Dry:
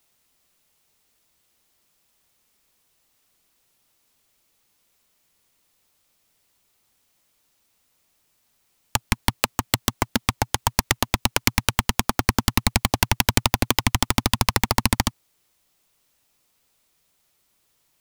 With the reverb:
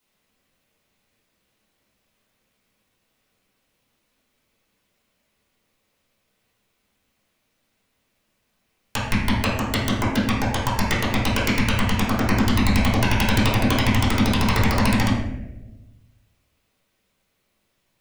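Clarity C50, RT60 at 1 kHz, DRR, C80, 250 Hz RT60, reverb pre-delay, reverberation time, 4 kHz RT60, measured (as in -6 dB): 1.0 dB, 0.85 s, -9.5 dB, 4.5 dB, 1.4 s, 5 ms, 1.1 s, 0.60 s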